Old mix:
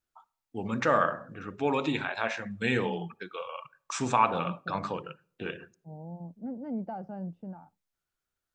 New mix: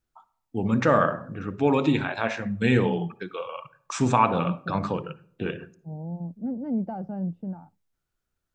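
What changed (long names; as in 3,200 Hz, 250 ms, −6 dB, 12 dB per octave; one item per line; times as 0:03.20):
first voice: send +9.5 dB
master: add low-shelf EQ 400 Hz +10 dB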